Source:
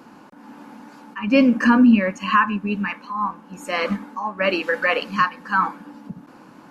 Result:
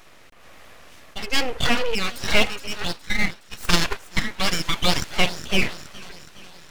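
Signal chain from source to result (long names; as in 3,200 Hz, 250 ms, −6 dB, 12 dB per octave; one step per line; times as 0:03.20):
on a send: delay with a high-pass on its return 417 ms, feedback 58%, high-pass 3,100 Hz, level −7 dB
0:02.77–0:04.23: on the sum: transient designer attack +12 dB, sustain −4 dB
tilt shelving filter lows −8 dB, about 660 Hz
full-wave rectification
level −2 dB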